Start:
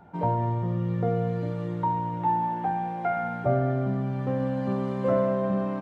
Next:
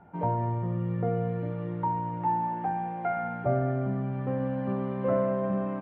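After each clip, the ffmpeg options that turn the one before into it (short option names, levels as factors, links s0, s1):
-af "lowpass=f=2800:w=0.5412,lowpass=f=2800:w=1.3066,volume=0.75"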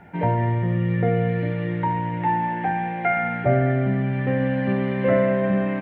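-af "highshelf=f=1500:t=q:w=3:g=7,volume=2.51"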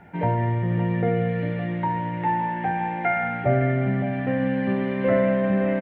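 -af "aecho=1:1:563:0.299,volume=0.841"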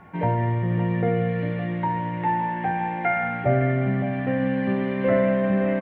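-af "aeval=exprs='val(0)+0.00224*sin(2*PI*1100*n/s)':c=same"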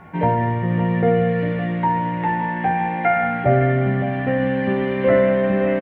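-filter_complex "[0:a]asplit=2[s0][s1];[s1]adelay=13,volume=0.376[s2];[s0][s2]amix=inputs=2:normalize=0,volume=1.68"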